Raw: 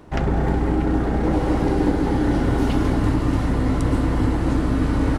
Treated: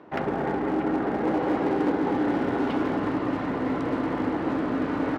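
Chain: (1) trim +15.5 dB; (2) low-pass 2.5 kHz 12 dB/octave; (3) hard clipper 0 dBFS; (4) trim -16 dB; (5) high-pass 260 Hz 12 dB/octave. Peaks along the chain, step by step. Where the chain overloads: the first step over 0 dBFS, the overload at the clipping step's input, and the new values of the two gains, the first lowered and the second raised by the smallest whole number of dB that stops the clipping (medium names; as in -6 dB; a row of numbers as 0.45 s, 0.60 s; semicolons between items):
+9.0 dBFS, +8.5 dBFS, 0.0 dBFS, -16.0 dBFS, -13.0 dBFS; step 1, 8.5 dB; step 1 +6.5 dB, step 4 -7 dB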